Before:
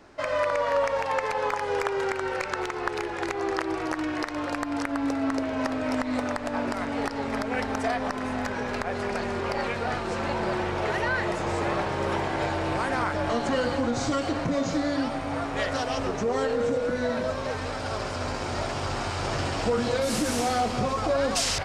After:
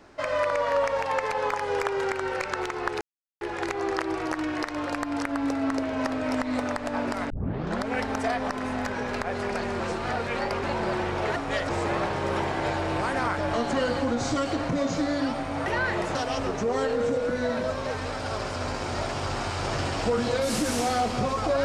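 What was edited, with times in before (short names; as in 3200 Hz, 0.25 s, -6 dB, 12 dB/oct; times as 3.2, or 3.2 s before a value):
3.01 insert silence 0.40 s
6.9 tape start 0.55 s
9.4–10.23 reverse
10.96–11.45 swap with 15.42–15.75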